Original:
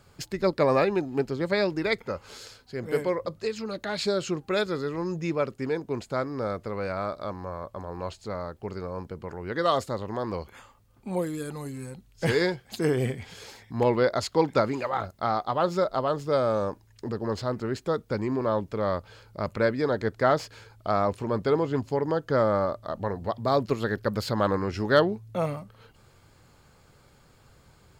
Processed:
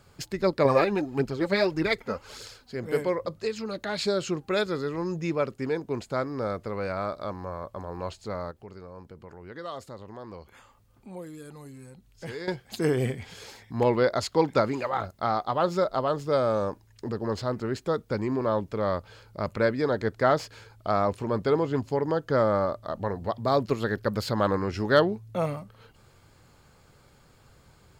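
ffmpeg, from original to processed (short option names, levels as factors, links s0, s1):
-filter_complex "[0:a]asettb=1/sr,asplit=3[s0][s1][s2];[s0]atrim=end=0.654[s3];[s1]atrim=start=0.65:end=2.75,asetpts=PTS-STARTPTS,afade=t=in:d=0.004:c=qsin,afade=t=out:st=2.096:d=0.004:c=qsin,aphaser=in_gain=1:out_gain=1:delay=4.7:decay=0.5:speed=1.7:type=triangular[s4];[s2]atrim=start=2.746[s5];[s3][s4]acrossfade=d=0.004:c1=hsin:c2=qsin[s6];[s6][s5]acrossfade=d=0.004:c1=qsin:c2=hsin,asettb=1/sr,asplit=3[s7][s8][s9];[s7]atrim=end=8.514[s10];[s8]atrim=start=8.51:end=12.48,asetpts=PTS-STARTPTS,afade=t=in:d=0.004:c=qsin,afade=t=out:st=3.966:d=0.004:c=qsin,acompressor=threshold=0.00141:ratio=1.5:attack=3.2:release=140:knee=1:detection=peak[s11];[s9]atrim=start=12.476[s12];[s10][s11]acrossfade=d=0.004:c1=hsin:c2=qsin[s13];[s13][s12]acrossfade=d=0.004:c1=qsin:c2=hsin"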